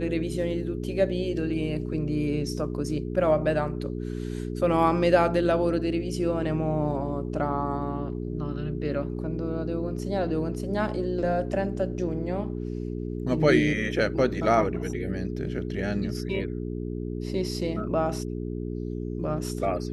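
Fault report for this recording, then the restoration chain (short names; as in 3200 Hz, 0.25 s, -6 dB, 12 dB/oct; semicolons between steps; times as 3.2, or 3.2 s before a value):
hum 60 Hz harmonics 7 -32 dBFS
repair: de-hum 60 Hz, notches 7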